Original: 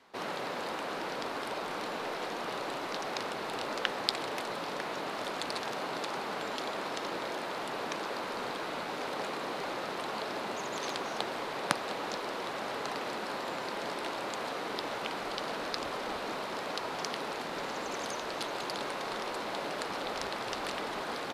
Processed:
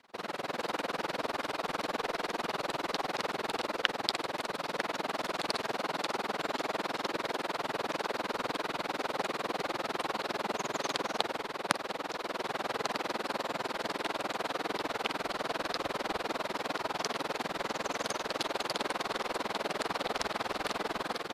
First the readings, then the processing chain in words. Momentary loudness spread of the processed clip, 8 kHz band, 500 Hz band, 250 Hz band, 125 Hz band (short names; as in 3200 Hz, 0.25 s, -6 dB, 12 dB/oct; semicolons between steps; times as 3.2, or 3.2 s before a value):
2 LU, +1.0 dB, +1.0 dB, +1.0 dB, +1.5 dB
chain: AGC gain up to 4 dB; AM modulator 20 Hz, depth 95%; gain +1.5 dB